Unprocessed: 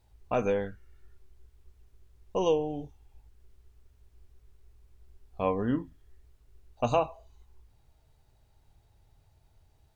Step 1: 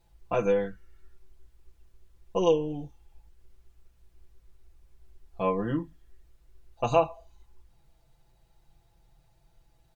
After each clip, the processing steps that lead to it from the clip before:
comb filter 5.9 ms, depth 97%
level −1.5 dB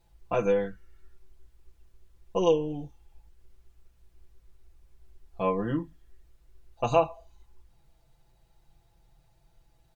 no processing that can be heard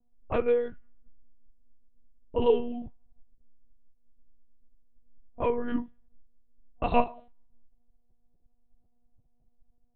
frequency shifter −29 Hz
low-pass that shuts in the quiet parts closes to 360 Hz, open at −23.5 dBFS
one-pitch LPC vocoder at 8 kHz 240 Hz

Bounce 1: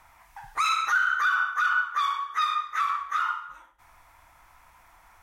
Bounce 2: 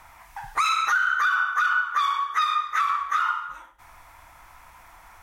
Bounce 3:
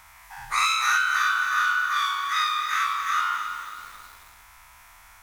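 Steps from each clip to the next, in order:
downward compressor 3 to 1, threshold −27 dBFS, peak gain reduction 6.5 dB; level +6.5 dB
every bin's largest magnitude spread in time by 120 ms; guitar amp tone stack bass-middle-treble 5-5-5; feedback echo at a low word length 270 ms, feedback 55%, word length 8 bits, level −8.5 dB; level +6 dB

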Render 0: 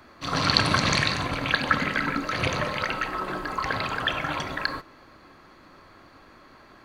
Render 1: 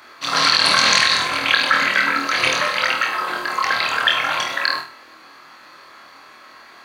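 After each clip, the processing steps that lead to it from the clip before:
high-pass filter 1,500 Hz 6 dB per octave
flutter between parallel walls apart 4.3 metres, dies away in 0.38 s
boost into a limiter +11.5 dB
level −1 dB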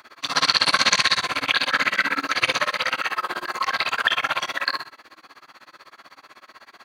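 amplitude tremolo 16 Hz, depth 98%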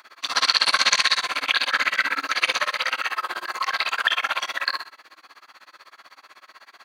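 high-pass filter 720 Hz 6 dB per octave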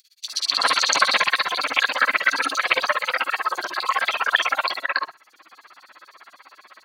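dynamic equaliser 560 Hz, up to +5 dB, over −37 dBFS, Q 0.77
multiband delay without the direct sound highs, lows 280 ms, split 3,900 Hz
reverb reduction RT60 0.81 s
level +3 dB

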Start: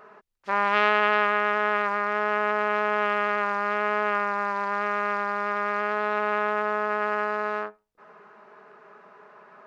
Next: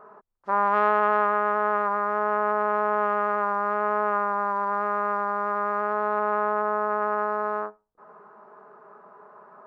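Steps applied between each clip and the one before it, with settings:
high shelf with overshoot 1,700 Hz −13.5 dB, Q 1.5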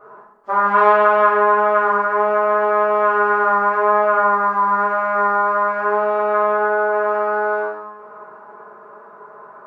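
convolution reverb, pre-delay 3 ms, DRR −10 dB
level −2 dB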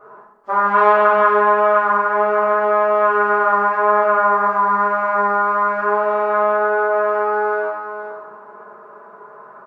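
single-tap delay 469 ms −9.5 dB

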